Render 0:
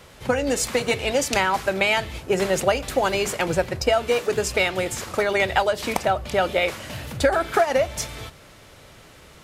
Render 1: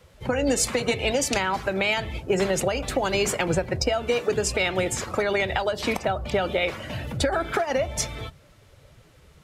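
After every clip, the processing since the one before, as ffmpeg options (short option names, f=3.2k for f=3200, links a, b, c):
-filter_complex "[0:a]afftdn=nr=13:nf=-38,alimiter=limit=-13dB:level=0:latency=1:release=136,acrossover=split=330|3000[a][b][c];[b]acompressor=threshold=-25dB:ratio=6[d];[a][d][c]amix=inputs=3:normalize=0,volume=2.5dB"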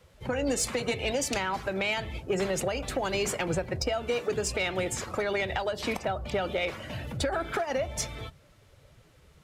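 -af "asoftclip=type=tanh:threshold=-13.5dB,volume=-4.5dB"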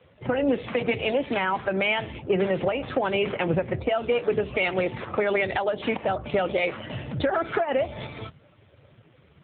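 -af "volume=6dB" -ar 8000 -c:a libopencore_amrnb -b:a 7400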